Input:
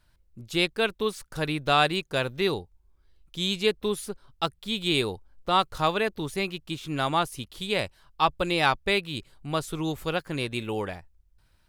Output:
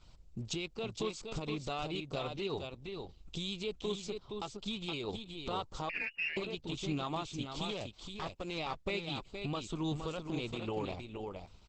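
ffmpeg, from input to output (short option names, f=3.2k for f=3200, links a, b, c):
-filter_complex "[0:a]acompressor=threshold=-47dB:ratio=2,alimiter=level_in=8dB:limit=-24dB:level=0:latency=1:release=96,volume=-8dB,asettb=1/sr,asplit=3[a][b][c];[a]atrim=end=0.524[d];[b]atrim=start=0.52:end=1.05,asetpts=PTS-STARTPTS,afade=t=in:d=0.004:c=qsin,afade=t=out:st=0.526:d=0.004:c=qsin,acompressor=mode=upward:threshold=-47dB:ratio=2.5[e];[c]atrim=start=1.046[f];[d][e]acrossfade=d=0.004:c1=hsin:c2=qsin[g];[g][f]acrossfade=d=0.004:c1=qsin:c2=hsin,asuperstop=centerf=1700:order=4:qfactor=2.1,asettb=1/sr,asplit=3[h][i][j];[h]atrim=end=7.674[k];[i]atrim=start=7.67:end=8.58,asetpts=PTS-STARTPTS,afade=t=in:d=0.004:c=qsin,afade=t=out:st=0.906:d=0.004:c=qsin,aeval=exprs='clip(val(0),-1,0.00501)':c=same[l];[j]atrim=start=8.576[m];[k][l]acrossfade=d=0.004:c1=hsin:c2=qsin[n];[n][m]acrossfade=d=0.004:c1=qsin:c2=hsin,aecho=1:1:468:0.531,asettb=1/sr,asplit=3[o][p][q];[o]atrim=end=5.894[r];[p]atrim=start=5.89:end=6.37,asetpts=PTS-STARTPTS,afade=t=in:d=0.004:c=qsin,afade=t=out:st=0.476:d=0.004:c=qsin,lowpass=f=2.5k:t=q:w=0.5098,lowpass=f=2.5k:t=q:w=0.6013,lowpass=f=2.5k:t=q:w=0.9,lowpass=f=2.5k:t=q:w=2.563,afreqshift=-2900[s];[q]atrim=start=6.366[t];[r][s]acrossfade=d=0.004:c1=hsin:c2=qsin[u];[u][t]acrossfade=d=0.004:c1=qsin:c2=hsin,aeval=exprs='0.0376*(cos(1*acos(clip(val(0)/0.0376,-1,1)))-cos(1*PI/2))+0.000668*(cos(6*acos(clip(val(0)/0.0376,-1,1)))-cos(6*PI/2))':c=same,volume=7dB" -ar 48000 -c:a libopus -b:a 10k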